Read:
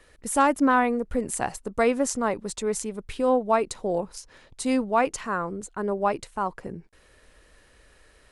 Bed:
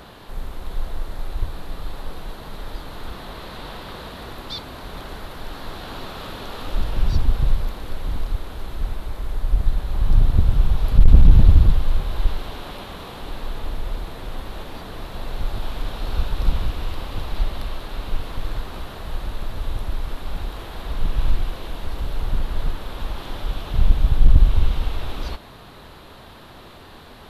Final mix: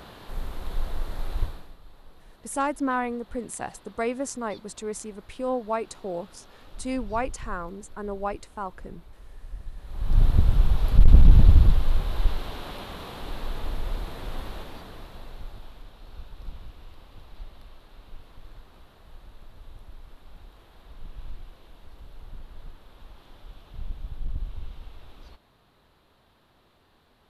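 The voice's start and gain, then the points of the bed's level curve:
2.20 s, −6.0 dB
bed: 0:01.43 −2.5 dB
0:01.78 −19.5 dB
0:09.74 −19.5 dB
0:10.22 −3 dB
0:14.45 −3 dB
0:15.91 −19.5 dB

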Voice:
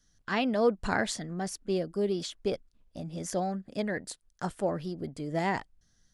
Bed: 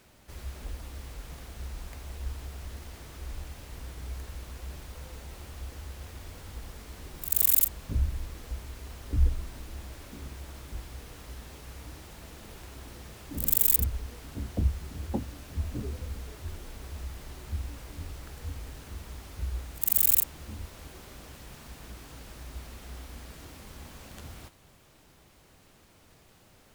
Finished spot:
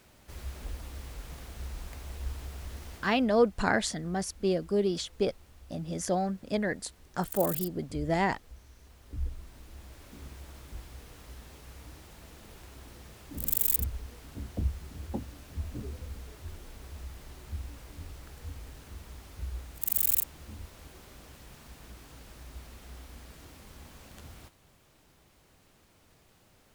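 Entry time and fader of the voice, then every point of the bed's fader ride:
2.75 s, +2.0 dB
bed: 0:02.95 −0.5 dB
0:03.28 −13.5 dB
0:08.75 −13.5 dB
0:10.24 −4 dB

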